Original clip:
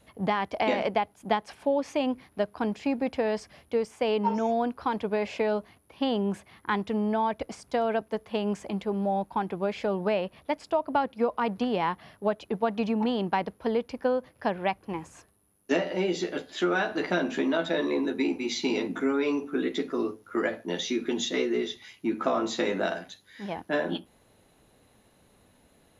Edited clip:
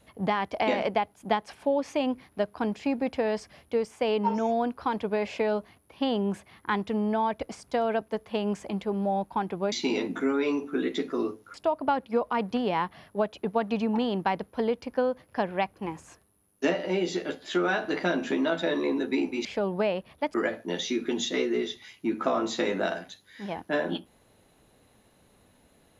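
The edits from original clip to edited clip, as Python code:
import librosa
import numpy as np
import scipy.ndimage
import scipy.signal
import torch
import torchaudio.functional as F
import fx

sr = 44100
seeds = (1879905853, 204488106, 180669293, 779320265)

y = fx.edit(x, sr, fx.swap(start_s=9.72, length_s=0.89, other_s=18.52, other_length_s=1.82), tone=tone)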